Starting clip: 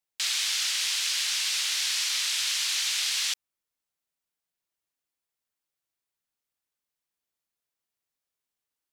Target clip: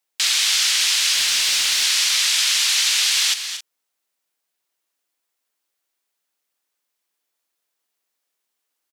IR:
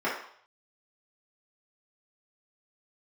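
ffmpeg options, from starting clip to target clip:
-filter_complex "[0:a]highpass=280,asettb=1/sr,asplit=3[a][b][c];[a]atrim=end=1.144[d];[b]atrim=start=1.14:end=1.84,asetpts=PTS-STARTPTS,afade=t=in:d=0.004:c=qsin,afade=t=out:st=0.696:d=0.004:c=qsin,asoftclip=type=hard:threshold=-23dB[e];[c]atrim=start=1.836[f];[d][e]acrossfade=d=0.004:c1=hsin:c2=qsin[g];[g][f]acrossfade=d=0.004:c1=qsin:c2=hsin,aecho=1:1:230|269:0.299|0.168,volume=9dB"

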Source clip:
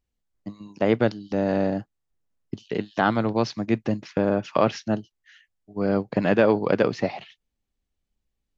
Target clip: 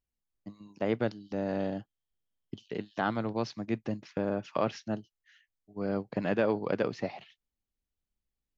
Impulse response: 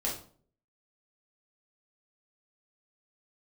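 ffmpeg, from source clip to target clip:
-filter_complex "[0:a]asettb=1/sr,asplit=3[a][b][c];[a]atrim=end=1.594[d];[b]atrim=start=1.59:end=2.6,asetpts=PTS-STARTPTS,afade=t=in:d=0.004:c=qsin,afade=t=out:st=1.006:d=0.004:c=qsin,equalizer=f=3.2k:w=6.5:g=14.5[e];[c]atrim=start=2.596[f];[d][e]acrossfade=d=0.004:c1=hsin:c2=qsin[g];[g][f]acrossfade=d=0.004:c1=qsin:c2=hsin,volume=-9dB"

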